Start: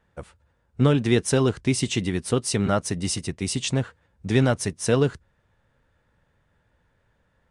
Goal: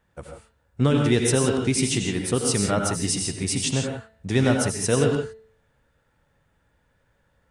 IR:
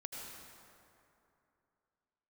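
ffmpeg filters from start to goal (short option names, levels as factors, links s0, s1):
-filter_complex "[0:a]highshelf=f=7200:g=7.5,bandreject=f=221:t=h:w=4,bandreject=f=442:t=h:w=4,bandreject=f=663:t=h:w=4,bandreject=f=884:t=h:w=4,bandreject=f=1105:t=h:w=4,bandreject=f=1326:t=h:w=4,bandreject=f=1547:t=h:w=4,bandreject=f=1768:t=h:w=4,bandreject=f=1989:t=h:w=4,bandreject=f=2210:t=h:w=4,bandreject=f=2431:t=h:w=4,bandreject=f=2652:t=h:w=4,bandreject=f=2873:t=h:w=4,bandreject=f=3094:t=h:w=4,bandreject=f=3315:t=h:w=4,bandreject=f=3536:t=h:w=4,bandreject=f=3757:t=h:w=4,bandreject=f=3978:t=h:w=4,bandreject=f=4199:t=h:w=4,bandreject=f=4420:t=h:w=4[s0];[1:a]atrim=start_sample=2205,afade=t=out:st=0.23:d=0.01,atrim=end_sample=10584[s1];[s0][s1]afir=irnorm=-1:irlink=0,volume=1.58"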